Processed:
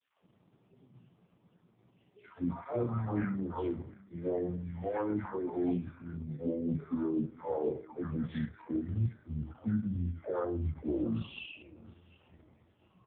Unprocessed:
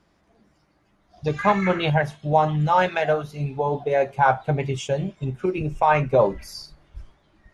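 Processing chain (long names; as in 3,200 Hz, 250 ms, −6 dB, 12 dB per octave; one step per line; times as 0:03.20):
high-shelf EQ 2,000 Hz −2 dB
reversed playback
downward compressor 6 to 1, threshold −30 dBFS, peak gain reduction 16.5 dB
reversed playback
all-pass dispersion lows, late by 139 ms, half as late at 1,500 Hz
high-pass filter sweep 240 Hz → 120 Hz, 0:04.62–0:06.36
on a send: repeating echo 415 ms, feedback 27%, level −23 dB
on the sum: wrong playback speed 78 rpm record played at 45 rpm
level −1.5 dB
AMR narrowband 4.75 kbit/s 8,000 Hz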